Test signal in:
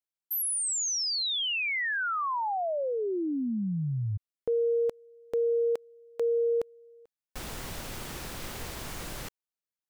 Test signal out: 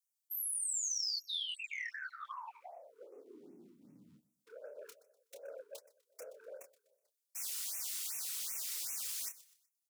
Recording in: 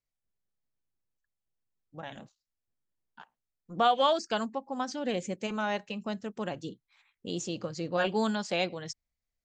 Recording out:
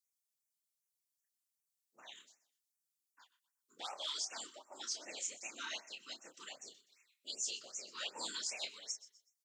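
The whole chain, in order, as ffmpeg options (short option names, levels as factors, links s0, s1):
-filter_complex "[0:a]flanger=delay=6.9:depth=2.9:regen=-35:speed=1.5:shape=triangular,afftfilt=real='hypot(re,im)*cos(2*PI*random(0))':imag='hypot(re,im)*sin(2*PI*random(1))':win_size=512:overlap=0.75,bandreject=f=1600:w=15,asoftclip=type=tanh:threshold=0.0473,aderivative,areverse,acompressor=threshold=0.00224:ratio=10:attack=8.8:release=68:knee=1:detection=peak,areverse,equalizer=f=6000:w=0.39:g=6.5,asplit=2[s0][s1];[s1]adelay=28,volume=0.473[s2];[s0][s2]amix=inputs=2:normalize=0,acontrast=32,afreqshift=57,asplit=2[s3][s4];[s4]aecho=0:1:124|248|372:0.119|0.0428|0.0154[s5];[s3][s5]amix=inputs=2:normalize=0,afftfilt=real='re*(1-between(b*sr/1024,620*pow(4000/620,0.5+0.5*sin(2*PI*2.6*pts/sr))/1.41,620*pow(4000/620,0.5+0.5*sin(2*PI*2.6*pts/sr))*1.41))':imag='im*(1-between(b*sr/1024,620*pow(4000/620,0.5+0.5*sin(2*PI*2.6*pts/sr))/1.41,620*pow(4000/620,0.5+0.5*sin(2*PI*2.6*pts/sr))*1.41))':win_size=1024:overlap=0.75,volume=1.78"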